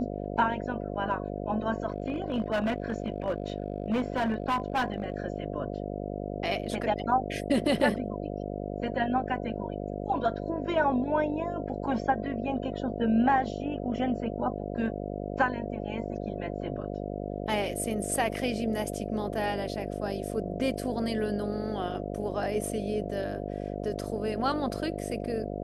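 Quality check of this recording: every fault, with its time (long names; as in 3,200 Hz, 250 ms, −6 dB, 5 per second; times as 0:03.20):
mains buzz 50 Hz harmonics 14 −35 dBFS
0:01.88–0:05.14: clipping −23.5 dBFS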